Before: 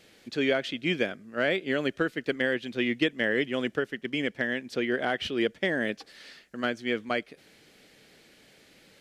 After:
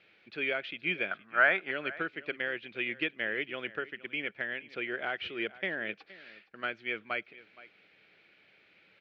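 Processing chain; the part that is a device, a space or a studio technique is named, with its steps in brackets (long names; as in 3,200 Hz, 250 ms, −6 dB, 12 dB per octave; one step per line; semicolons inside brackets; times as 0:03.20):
guitar cabinet (loudspeaker in its box 100–3,800 Hz, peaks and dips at 140 Hz −5 dB, 250 Hz −10 dB, 480 Hz −3 dB, 1,400 Hz +6 dB, 2,400 Hz +10 dB)
0:01.11–0:01.71: flat-topped bell 1,100 Hz +12 dB
single-tap delay 469 ms −19 dB
level −8 dB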